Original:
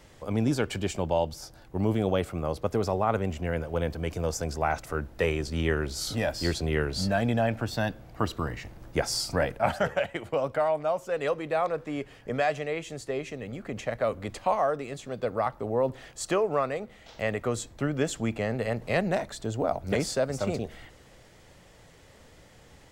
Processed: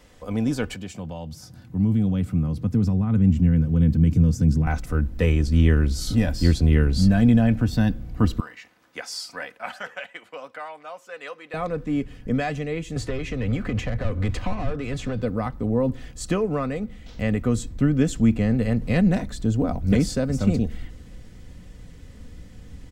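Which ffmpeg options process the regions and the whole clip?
ffmpeg -i in.wav -filter_complex "[0:a]asettb=1/sr,asplit=3[link_01][link_02][link_03];[link_01]atrim=end=0.744[link_04];[link_02]atrim=start=0.74:end=4.67,asetpts=PTS-STARTPTS,afade=type=in:duration=0.004:curve=qsin,afade=type=out:start_time=3.926:duration=0.004:curve=qsin,highpass=frequency=110:width=0.5412,highpass=frequency=110:width=1.3066,acompressor=threshold=-45dB:ratio=1.5:attack=3.2:release=140:knee=1:detection=peak,asubboost=boost=11:cutoff=220[link_05];[link_03]atrim=start=4.666[link_06];[link_04][link_05]acrossfade=duration=0.004:curve1=hsin:curve2=qsin[link_07];[link_07][link_06]acrossfade=duration=0.004:curve1=qsin:curve2=hsin,asettb=1/sr,asplit=3[link_08][link_09][link_10];[link_08]atrim=end=8.404[link_11];[link_09]atrim=start=8.4:end=11.54,asetpts=PTS-STARTPTS,afade=type=in:duration=0.004:curve=qsin,afade=type=out:start_time=3.136:duration=0.004:curve=qsin,highpass=970,highshelf=frequency=5900:gain=-8.5[link_12];[link_10]atrim=start=11.536[link_13];[link_11][link_12]acrossfade=duration=0.004:curve1=hsin:curve2=qsin[link_14];[link_14][link_13]acrossfade=duration=0.004:curve1=qsin:curve2=hsin,asettb=1/sr,asplit=3[link_15][link_16][link_17];[link_15]atrim=end=12.964[link_18];[link_16]atrim=start=12.96:end=15.22,asetpts=PTS-STARTPTS,afade=type=in:duration=0.004:curve=qsin,afade=type=out:start_time=2.256:duration=0.004:curve=qsin,asplit=2[link_19][link_20];[link_20]highpass=frequency=720:poles=1,volume=22dB,asoftclip=type=tanh:threshold=-13dB[link_21];[link_19][link_21]amix=inputs=2:normalize=0,lowpass=frequency=2400:poles=1,volume=-6dB,acrossover=split=93|500[link_22][link_23][link_24];[link_22]acompressor=threshold=-51dB:ratio=4[link_25];[link_23]acompressor=threshold=-35dB:ratio=4[link_26];[link_24]acompressor=threshold=-34dB:ratio=4[link_27];[link_25][link_26][link_27]amix=inputs=3:normalize=0,lowshelf=frequency=140:width_type=q:width=1.5:gain=9[link_28];[link_17]atrim=start=15.216[link_29];[link_18][link_28]acrossfade=duration=0.004:curve1=hsin:curve2=qsin[link_30];[link_30][link_29]acrossfade=duration=0.004:curve1=qsin:curve2=hsin,bandreject=frequency=810:width=27,aecho=1:1:4:0.42,asubboost=boost=6.5:cutoff=240" out.wav

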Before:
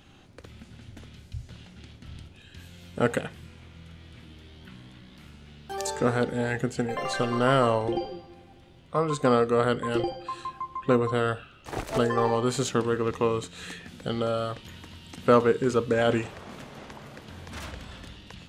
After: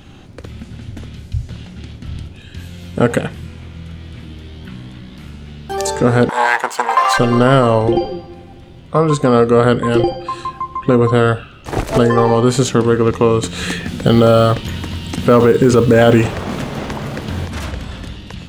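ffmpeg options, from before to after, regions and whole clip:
ffmpeg -i in.wav -filter_complex "[0:a]asettb=1/sr,asplit=3[link_01][link_02][link_03];[link_01]atrim=end=6.294[link_04];[link_02]atrim=start=6.29:end=7.18,asetpts=PTS-STARTPTS,afade=type=in:duration=0.004:curve=qsin,afade=type=out:start_time=0.886:duration=0.004:curve=qsin,aeval=exprs='if(lt(val(0),0),0.251*val(0),val(0))':channel_layout=same,acontrast=37,highpass=frequency=960:width_type=q:width=5.4[link_05];[link_03]atrim=start=7.176[link_06];[link_04][link_05]acrossfade=duration=0.004:curve1=hsin:curve2=qsin[link_07];[link_07][link_06]acrossfade=duration=0.004:curve1=qsin:curve2=hsin,asettb=1/sr,asplit=3[link_08][link_09][link_10];[link_08]atrim=end=13.434[link_11];[link_09]atrim=start=13.43:end=17.47,asetpts=PTS-STARTPTS,afade=type=in:duration=0.004:curve=qsin,afade=type=out:start_time=4.036:duration=0.004:curve=qsin,acrusher=bits=8:mode=log:mix=0:aa=0.000001,acontrast=57[link_12];[link_10]atrim=start=17.466[link_13];[link_11][link_12]acrossfade=duration=0.004:curve1=hsin:curve2=qsin[link_14];[link_14][link_13]acrossfade=duration=0.004:curve1=qsin:curve2=hsin,lowshelf=frequency=420:gain=6,alimiter=level_in=11.5dB:limit=-1dB:release=50:level=0:latency=1,volume=-1dB" out.wav

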